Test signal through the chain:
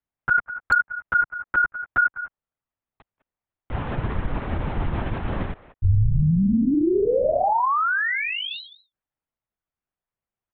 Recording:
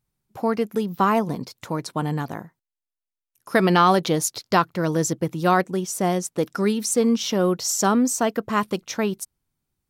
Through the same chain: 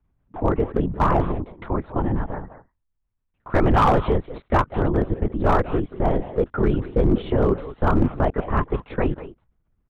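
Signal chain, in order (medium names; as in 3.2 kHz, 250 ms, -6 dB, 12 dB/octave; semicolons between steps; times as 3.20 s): low-pass 1.6 kHz 12 dB/octave; bass shelf 76 Hz +10 dB; speakerphone echo 190 ms, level -14 dB; in parallel at -2 dB: compression 4:1, threshold -33 dBFS; on the sum: LPC vocoder at 8 kHz whisper; hard clipper -10.5 dBFS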